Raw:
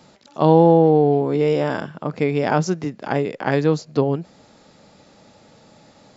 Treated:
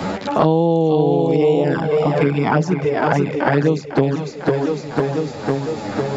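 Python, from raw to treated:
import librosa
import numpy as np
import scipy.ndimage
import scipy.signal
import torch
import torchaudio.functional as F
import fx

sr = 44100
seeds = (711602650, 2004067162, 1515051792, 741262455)

y = fx.echo_feedback(x, sr, ms=502, feedback_pct=48, wet_db=-6.5)
y = fx.env_flanger(y, sr, rest_ms=11.1, full_db=-12.0)
y = fx.band_squash(y, sr, depth_pct=100)
y = y * librosa.db_to_amplitude(2.0)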